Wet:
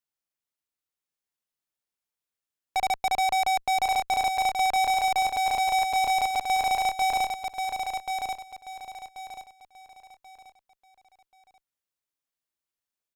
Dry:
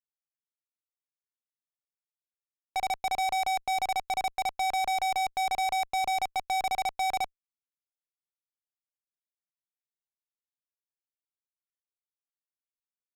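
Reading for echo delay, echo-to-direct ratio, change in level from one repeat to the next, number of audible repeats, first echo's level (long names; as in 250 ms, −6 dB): 1,084 ms, −5.0 dB, −10.0 dB, 3, −5.5 dB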